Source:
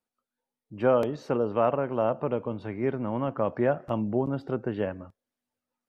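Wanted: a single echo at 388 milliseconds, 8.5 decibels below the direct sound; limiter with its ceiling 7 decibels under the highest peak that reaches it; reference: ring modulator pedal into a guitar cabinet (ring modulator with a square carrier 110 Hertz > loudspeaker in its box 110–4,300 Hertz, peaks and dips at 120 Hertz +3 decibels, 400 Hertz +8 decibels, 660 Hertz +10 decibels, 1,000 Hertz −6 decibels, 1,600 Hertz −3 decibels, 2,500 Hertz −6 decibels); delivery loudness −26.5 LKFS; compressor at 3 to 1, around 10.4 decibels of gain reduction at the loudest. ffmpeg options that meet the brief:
ffmpeg -i in.wav -af "acompressor=threshold=-32dB:ratio=3,alimiter=level_in=2dB:limit=-24dB:level=0:latency=1,volume=-2dB,aecho=1:1:388:0.376,aeval=exprs='val(0)*sgn(sin(2*PI*110*n/s))':channel_layout=same,highpass=110,equalizer=frequency=120:width_type=q:width=4:gain=3,equalizer=frequency=400:width_type=q:width=4:gain=8,equalizer=frequency=660:width_type=q:width=4:gain=10,equalizer=frequency=1000:width_type=q:width=4:gain=-6,equalizer=frequency=1600:width_type=q:width=4:gain=-3,equalizer=frequency=2500:width_type=q:width=4:gain=-6,lowpass=frequency=4300:width=0.5412,lowpass=frequency=4300:width=1.3066,volume=7dB" out.wav

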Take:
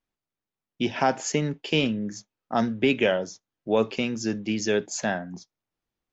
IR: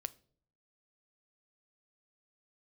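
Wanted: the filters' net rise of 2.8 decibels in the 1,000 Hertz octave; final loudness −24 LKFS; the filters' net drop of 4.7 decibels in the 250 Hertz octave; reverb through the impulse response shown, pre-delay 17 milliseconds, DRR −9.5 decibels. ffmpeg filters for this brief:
-filter_complex "[0:a]equalizer=frequency=250:width_type=o:gain=-6,equalizer=frequency=1000:width_type=o:gain=4.5,asplit=2[link_01][link_02];[1:a]atrim=start_sample=2205,adelay=17[link_03];[link_02][link_03]afir=irnorm=-1:irlink=0,volume=12dB[link_04];[link_01][link_04]amix=inputs=2:normalize=0,volume=-7.5dB"

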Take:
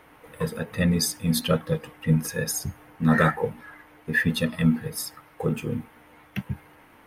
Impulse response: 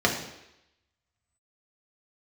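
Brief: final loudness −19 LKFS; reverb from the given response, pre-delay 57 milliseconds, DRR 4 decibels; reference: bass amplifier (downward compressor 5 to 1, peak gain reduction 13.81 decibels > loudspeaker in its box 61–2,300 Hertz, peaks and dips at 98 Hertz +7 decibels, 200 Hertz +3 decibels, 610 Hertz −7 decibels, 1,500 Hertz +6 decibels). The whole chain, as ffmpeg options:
-filter_complex "[0:a]asplit=2[link_01][link_02];[1:a]atrim=start_sample=2205,adelay=57[link_03];[link_02][link_03]afir=irnorm=-1:irlink=0,volume=-19.5dB[link_04];[link_01][link_04]amix=inputs=2:normalize=0,acompressor=threshold=-27dB:ratio=5,highpass=frequency=61:width=0.5412,highpass=frequency=61:width=1.3066,equalizer=frequency=98:width_type=q:width=4:gain=7,equalizer=frequency=200:width_type=q:width=4:gain=3,equalizer=frequency=610:width_type=q:width=4:gain=-7,equalizer=frequency=1500:width_type=q:width=4:gain=6,lowpass=frequency=2300:width=0.5412,lowpass=frequency=2300:width=1.3066,volume=12.5dB"

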